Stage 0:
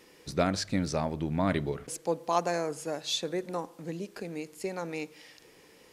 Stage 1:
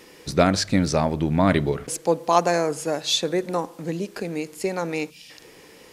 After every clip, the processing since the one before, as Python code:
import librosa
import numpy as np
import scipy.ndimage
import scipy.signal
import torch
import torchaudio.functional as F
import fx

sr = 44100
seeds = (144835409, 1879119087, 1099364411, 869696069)

y = fx.spec_box(x, sr, start_s=5.1, length_s=0.2, low_hz=250.0, high_hz=2300.0, gain_db=-15)
y = y * librosa.db_to_amplitude(9.0)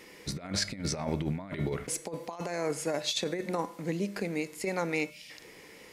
y = fx.peak_eq(x, sr, hz=2100.0, db=8.5, octaves=0.25)
y = fx.comb_fb(y, sr, f0_hz=200.0, decay_s=0.54, harmonics='odd', damping=0.0, mix_pct=60)
y = fx.over_compress(y, sr, threshold_db=-31.0, ratio=-0.5)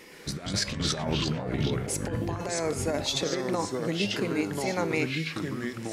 y = fx.echo_pitch(x, sr, ms=118, semitones=-4, count=2, db_per_echo=-3.0)
y = y * librosa.db_to_amplitude(2.0)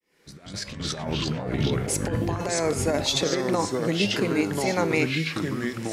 y = fx.fade_in_head(x, sr, length_s=1.89)
y = y * librosa.db_to_amplitude(4.5)